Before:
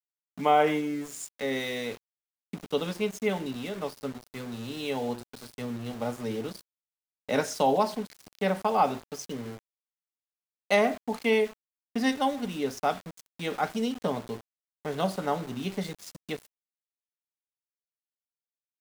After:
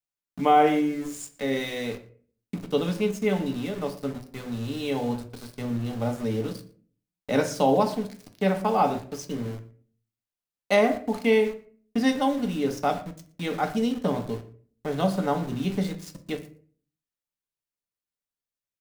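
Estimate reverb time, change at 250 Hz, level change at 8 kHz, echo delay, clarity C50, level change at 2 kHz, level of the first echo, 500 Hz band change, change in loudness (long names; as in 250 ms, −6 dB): 0.45 s, +5.5 dB, +0.5 dB, 117 ms, 12.5 dB, +1.0 dB, −21.0 dB, +3.0 dB, +3.5 dB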